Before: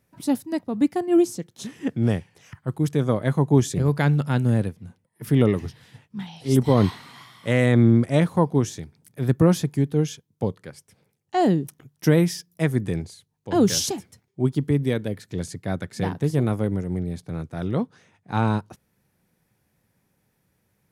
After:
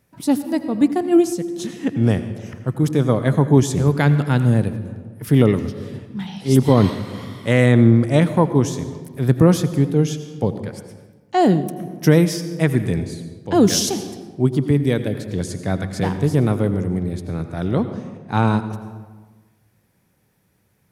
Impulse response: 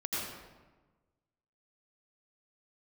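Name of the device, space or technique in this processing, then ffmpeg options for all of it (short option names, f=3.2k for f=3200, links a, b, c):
compressed reverb return: -filter_complex "[0:a]asplit=2[a][b];[1:a]atrim=start_sample=2205[c];[b][c]afir=irnorm=-1:irlink=0,acompressor=threshold=-15dB:ratio=6,volume=-11dB[d];[a][d]amix=inputs=2:normalize=0,volume=3dB"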